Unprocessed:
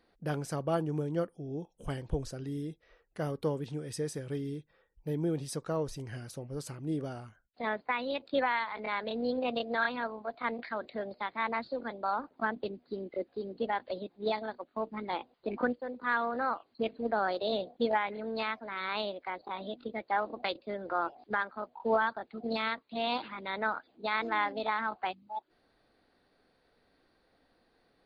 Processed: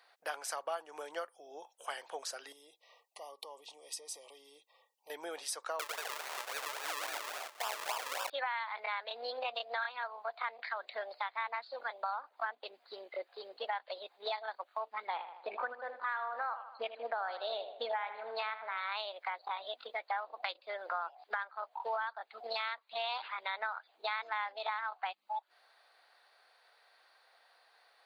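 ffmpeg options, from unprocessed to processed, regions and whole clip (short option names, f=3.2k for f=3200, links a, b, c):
-filter_complex "[0:a]asettb=1/sr,asplit=3[a][b][c];[a]atrim=end=2.524[d];[b]atrim=start=2.52:end=5.1,asetpts=PTS-STARTPTS,afade=t=in:d=0.004:c=qsin,afade=t=out:st=2.576:d=0.004:c=qsin,equalizer=f=2.1k:w=3.8:g=-11,acompressor=threshold=-43dB:ratio=6:attack=3.2:release=140:knee=1:detection=peak,asuperstop=centerf=1500:order=20:qfactor=2.2[e];[c]atrim=start=5.096[f];[d][e]acrossfade=d=0.004:c1=hsin:c2=qsin[g];[g][f]acrossfade=d=0.004:c1=qsin:c2=hsin,asettb=1/sr,asplit=3[h][i][j];[h]atrim=end=5.794[k];[i]atrim=start=5.79:end=8.3,asetpts=PTS-STARTPTS,afade=t=in:d=0.004:c=qsin,afade=t=out:st=2.506:d=0.004:c=qsin,aecho=1:1:100|185|257.2|318.7|370.9:0.794|0.631|0.501|0.398|0.316,atrim=end_sample=110691,acrusher=samples=41:mix=1:aa=0.000001:lfo=1:lforange=41:lforate=3.6[l];[j]atrim=start=8.296[m];[k][l]acrossfade=d=0.004:c1=hsin:c2=qsin[n];[n][m]acrossfade=d=0.004:c1=qsin:c2=hsin,asettb=1/sr,asplit=3[o][p][q];[o]atrim=end=15.074[r];[p]atrim=start=15.07:end=18.92,asetpts=PTS-STARTPTS,afade=t=in:d=0.004:c=qsin,afade=t=out:st=3.846:d=0.004:c=qsin,aemphasis=mode=reproduction:type=bsi,asplit=2[s][t];[t]adelay=78,lowpass=f=3.3k:p=1,volume=-11.5dB,asplit=2[u][v];[v]adelay=78,lowpass=f=3.3k:p=1,volume=0.42,asplit=2[w][x];[x]adelay=78,lowpass=f=3.3k:p=1,volume=0.42,asplit=2[y][z];[z]adelay=78,lowpass=f=3.3k:p=1,volume=0.42[aa];[s][u][w][y][aa]amix=inputs=5:normalize=0,atrim=end_sample=169785[ab];[q]atrim=start=18.916[ac];[r][ab]acrossfade=d=0.004:c1=hsin:c2=qsin[ad];[ad][ac]acrossfade=d=0.004:c1=qsin:c2=hsin,highpass=f=720:w=0.5412,highpass=f=720:w=1.3066,acompressor=threshold=-44dB:ratio=4,volume=8dB"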